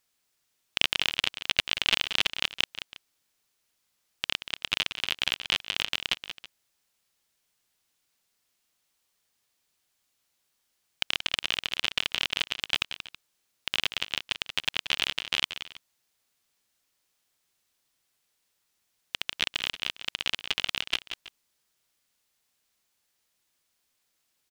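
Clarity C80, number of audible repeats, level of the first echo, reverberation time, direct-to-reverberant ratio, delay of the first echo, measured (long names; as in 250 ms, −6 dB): no reverb audible, 2, −10.5 dB, no reverb audible, no reverb audible, 181 ms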